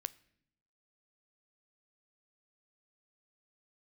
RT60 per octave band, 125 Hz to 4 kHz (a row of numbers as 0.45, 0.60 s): 1.1, 1.0, 0.80, 0.60, 0.70, 0.60 s